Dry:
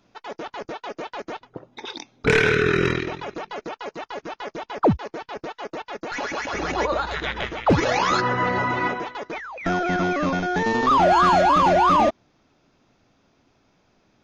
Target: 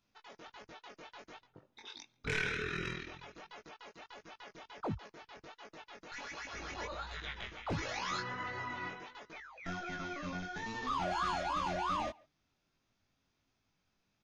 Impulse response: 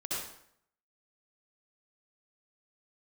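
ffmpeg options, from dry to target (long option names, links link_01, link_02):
-filter_complex "[0:a]flanger=delay=18.5:depth=3.6:speed=1.4,equalizer=frequency=440:width=0.39:gain=-10.5,asplit=2[link_01][link_02];[link_02]adelay=140,highpass=300,lowpass=3400,asoftclip=type=hard:threshold=-22.5dB,volume=-25dB[link_03];[link_01][link_03]amix=inputs=2:normalize=0,volume=-9dB"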